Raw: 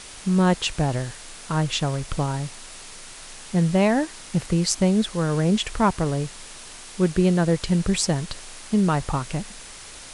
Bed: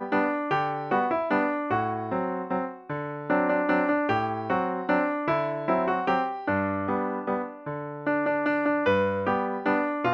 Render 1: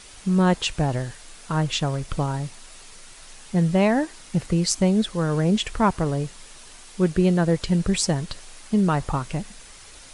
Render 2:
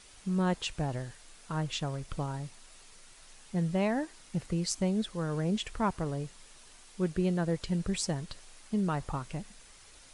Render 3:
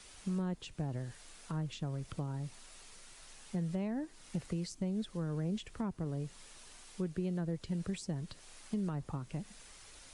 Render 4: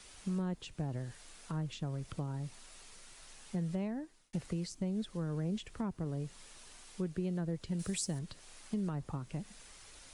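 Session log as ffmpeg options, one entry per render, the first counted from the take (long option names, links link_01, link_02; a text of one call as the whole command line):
ffmpeg -i in.wav -af "afftdn=noise_reduction=6:noise_floor=-41" out.wav
ffmpeg -i in.wav -af "volume=-10dB" out.wav
ffmpeg -i in.wav -filter_complex "[0:a]acrossover=split=86|380[link_01][link_02][link_03];[link_01]acompressor=threshold=-55dB:ratio=4[link_04];[link_02]acompressor=threshold=-35dB:ratio=4[link_05];[link_03]acompressor=threshold=-48dB:ratio=4[link_06];[link_04][link_05][link_06]amix=inputs=3:normalize=0" out.wav
ffmpeg -i in.wav -filter_complex "[0:a]asettb=1/sr,asplit=3[link_01][link_02][link_03];[link_01]atrim=end=7.794[link_04];[link_02]atrim=start=7.79:end=8.19,asetpts=PTS-STARTPTS,afade=type=in:duration=0.004:curve=qsin,afade=type=out:start_time=0.396:duration=0.004:curve=qsin,aemphasis=mode=production:type=75kf[link_05];[link_03]atrim=start=8.186[link_06];[link_04][link_05]acrossfade=duration=0.004:curve1=hsin:curve2=qsin[link_07];[link_07][link_06]acrossfade=duration=0.004:curve1=qsin:curve2=hsin,asplit=2[link_08][link_09];[link_08]atrim=end=4.33,asetpts=PTS-STARTPTS,afade=type=out:start_time=3.84:duration=0.49[link_10];[link_09]atrim=start=4.33,asetpts=PTS-STARTPTS,afade=type=in:duration=0.004:curve=hsin[link_11];[link_10][link_11]concat=n=2:v=0:a=1" out.wav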